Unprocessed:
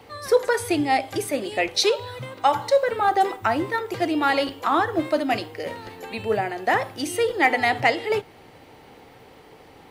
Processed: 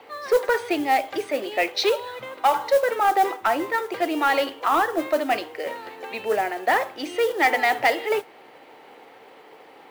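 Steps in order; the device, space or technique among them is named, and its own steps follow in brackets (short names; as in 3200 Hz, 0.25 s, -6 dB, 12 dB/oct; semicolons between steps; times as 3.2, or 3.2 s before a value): carbon microphone (BPF 380–3400 Hz; soft clip -13 dBFS, distortion -18 dB; modulation noise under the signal 22 dB); gain +2.5 dB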